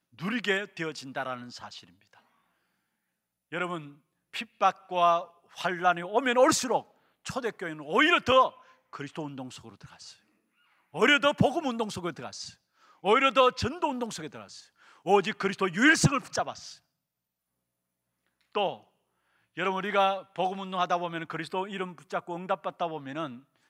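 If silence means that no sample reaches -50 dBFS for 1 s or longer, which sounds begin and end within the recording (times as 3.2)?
3.52–16.78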